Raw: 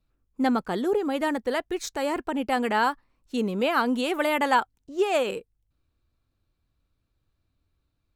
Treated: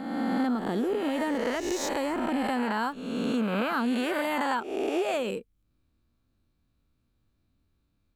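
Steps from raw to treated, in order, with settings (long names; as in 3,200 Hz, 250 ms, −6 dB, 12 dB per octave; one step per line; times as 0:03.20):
peak hold with a rise ahead of every peak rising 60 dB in 1.29 s
parametric band 220 Hz +9 dB 0.86 octaves
downward compressor 4 to 1, threshold −23 dBFS, peak gain reduction 9.5 dB
level −2.5 dB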